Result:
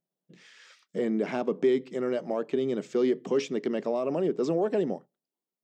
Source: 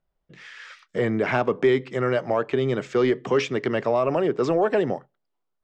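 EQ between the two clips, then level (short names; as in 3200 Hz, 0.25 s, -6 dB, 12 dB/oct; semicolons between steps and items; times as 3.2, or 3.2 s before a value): brick-wall FIR high-pass 150 Hz; bell 1500 Hz -14 dB 2.7 oct; 0.0 dB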